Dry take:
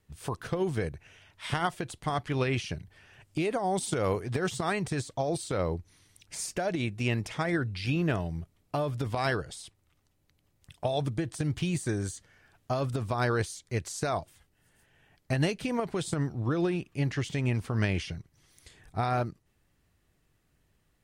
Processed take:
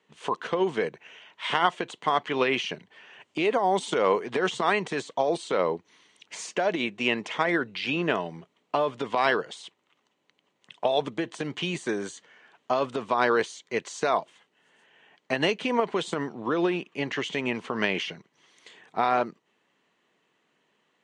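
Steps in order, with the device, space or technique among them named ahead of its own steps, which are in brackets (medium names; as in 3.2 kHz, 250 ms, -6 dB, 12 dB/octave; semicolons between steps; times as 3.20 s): television speaker (cabinet simulation 220–6600 Hz, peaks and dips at 300 Hz -4 dB, 450 Hz +3 dB, 1 kHz +7 dB, 2 kHz +3 dB, 3 kHz +6 dB, 5.1 kHz -8 dB); trim +4.5 dB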